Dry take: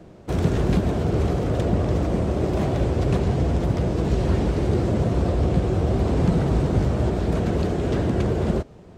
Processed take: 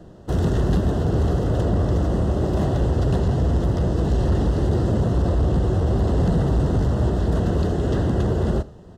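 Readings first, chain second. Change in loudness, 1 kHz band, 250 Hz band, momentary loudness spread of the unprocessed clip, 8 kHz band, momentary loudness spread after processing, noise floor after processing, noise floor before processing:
+1.0 dB, 0.0 dB, 0.0 dB, 2 LU, can't be measured, 2 LU, −42 dBFS, −45 dBFS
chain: low-shelf EQ 100 Hz +6 dB
hard clipping −14.5 dBFS, distortion −15 dB
Butterworth band-reject 2,300 Hz, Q 3.5
on a send: single-tap delay 82 ms −19.5 dB

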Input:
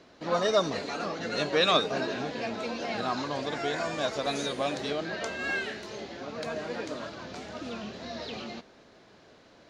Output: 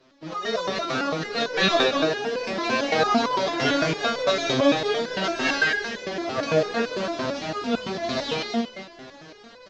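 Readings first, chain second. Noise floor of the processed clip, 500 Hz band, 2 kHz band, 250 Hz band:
−47 dBFS, +6.0 dB, +8.5 dB, +8.5 dB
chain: variable-slope delta modulation 32 kbit/s
slap from a distant wall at 41 metres, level −7 dB
automatic gain control gain up to 15 dB
step-sequenced resonator 8.9 Hz 130–500 Hz
level +8 dB

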